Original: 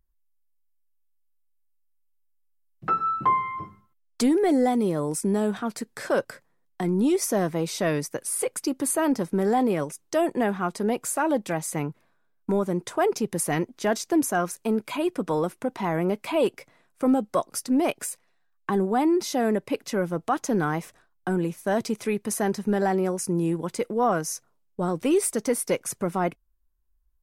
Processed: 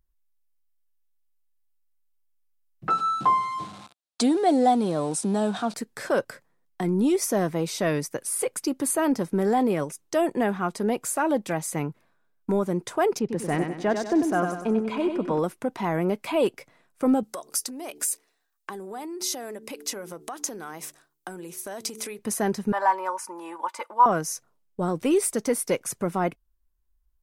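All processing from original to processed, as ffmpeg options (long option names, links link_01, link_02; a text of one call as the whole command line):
ffmpeg -i in.wav -filter_complex "[0:a]asettb=1/sr,asplit=3[link_01][link_02][link_03];[link_01]atrim=end=2.904[link_04];[link_02]atrim=start=2.9:end=5.74,asetpts=PTS-STARTPTS,afade=type=in:duration=0.004:curve=qsin,afade=type=out:start_time=2.836:duration=0.004:curve=qsin,aeval=exprs='val(0)+0.5*0.0119*sgn(val(0))':channel_layout=same,highpass=150,equalizer=frequency=390:width_type=q:width=4:gain=-5,equalizer=frequency=720:width_type=q:width=4:gain=7,equalizer=frequency=2000:width_type=q:width=4:gain=-6,equalizer=frequency=3900:width_type=q:width=4:gain=7,equalizer=frequency=8600:width_type=q:width=4:gain=3,lowpass=frequency=9700:width=0.5412,lowpass=frequency=9700:width=1.3066[link_05];[link_03]atrim=start=5.736[link_06];[link_04][link_05]acrossfade=duration=0.004:curve1=hsin:curve2=qsin[link_07];[link_07][link_06]acrossfade=duration=0.004:curve1=qsin:curve2=hsin,asettb=1/sr,asplit=3[link_08][link_09][link_10];[link_08]atrim=end=13.194[link_11];[link_09]atrim=start=13.19:end=15.39,asetpts=PTS-STARTPTS,afade=type=in:duration=0.004:curve=qsin,afade=type=out:start_time=2.196:duration=0.004:curve=qsin,aecho=1:1:96|192|288|384|480:0.501|0.226|0.101|0.0457|0.0206,atrim=end_sample=97020,adynamicsmooth=sensitivity=6.5:basefreq=6700,highshelf=frequency=3700:gain=-9.5[link_12];[link_10]atrim=start=15.386[link_13];[link_11][link_12]acrossfade=duration=0.004:curve1=hsin:curve2=qsin[link_14];[link_14][link_13]acrossfade=duration=0.004:curve1=qsin:curve2=hsin,asettb=1/sr,asplit=3[link_15][link_16][link_17];[link_15]atrim=end=17.234[link_18];[link_16]atrim=start=17.23:end=22.19,asetpts=PTS-STARTPTS,afade=type=in:duration=0.004:curve=qsin,afade=type=out:start_time=4.956:duration=0.004:curve=qsin,bandreject=frequency=73.54:width_type=h:width=4,bandreject=frequency=147.08:width_type=h:width=4,bandreject=frequency=220.62:width_type=h:width=4,bandreject=frequency=294.16:width_type=h:width=4,bandreject=frequency=367.7:width_type=h:width=4,bandreject=frequency=441.24:width_type=h:width=4,acompressor=threshold=-30dB:ratio=12:attack=3.2:release=140:knee=1:detection=peak,bass=frequency=250:gain=-11,treble=frequency=4000:gain=10[link_19];[link_17]atrim=start=22.186[link_20];[link_18][link_19]acrossfade=duration=0.004:curve1=hsin:curve2=qsin[link_21];[link_21][link_20]acrossfade=duration=0.004:curve1=qsin:curve2=hsin,asettb=1/sr,asplit=3[link_22][link_23][link_24];[link_22]atrim=end=22.724[link_25];[link_23]atrim=start=22.72:end=24.06,asetpts=PTS-STARTPTS,afade=type=in:duration=0.004:curve=qsin,afade=type=out:start_time=1.336:duration=0.004:curve=qsin,highpass=frequency=970:width_type=q:width=5.8,highshelf=frequency=2800:gain=-8.5,aecho=1:1:3.4:0.65,atrim=end_sample=59094[link_26];[link_24]atrim=start=24.056[link_27];[link_25][link_26]acrossfade=duration=0.004:curve1=hsin:curve2=qsin[link_28];[link_28][link_27]acrossfade=duration=0.004:curve1=qsin:curve2=hsin" out.wav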